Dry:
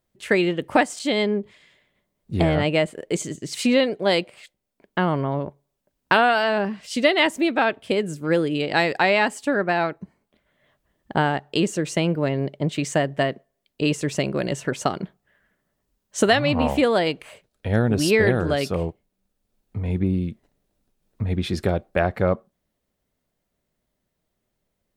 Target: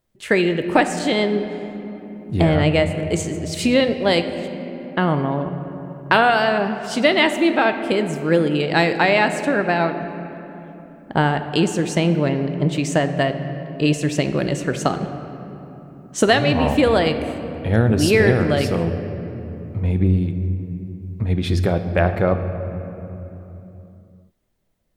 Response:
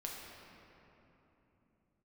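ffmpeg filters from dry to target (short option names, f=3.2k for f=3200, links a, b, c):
-filter_complex "[0:a]asplit=2[a][b];[1:a]atrim=start_sample=2205,lowshelf=f=170:g=8.5[c];[b][c]afir=irnorm=-1:irlink=0,volume=-3dB[d];[a][d]amix=inputs=2:normalize=0,volume=-1dB"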